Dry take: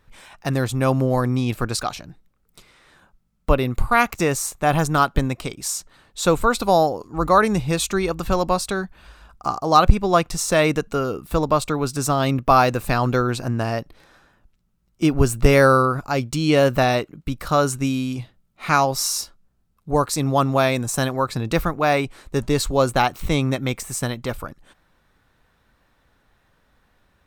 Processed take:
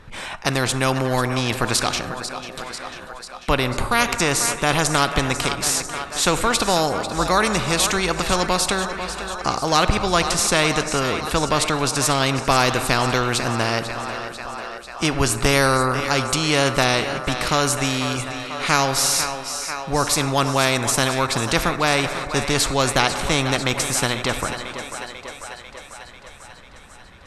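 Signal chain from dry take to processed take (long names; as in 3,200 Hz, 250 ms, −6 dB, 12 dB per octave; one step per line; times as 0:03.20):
linear-phase brick-wall low-pass 12,000 Hz
high-shelf EQ 7,900 Hz −9 dB
on a send: feedback echo with a high-pass in the loop 494 ms, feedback 66%, high-pass 420 Hz, level −16 dB
on the sum: dense smooth reverb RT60 1.4 s, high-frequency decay 0.45×, DRR 15.5 dB
every bin compressed towards the loudest bin 2 to 1
level +1 dB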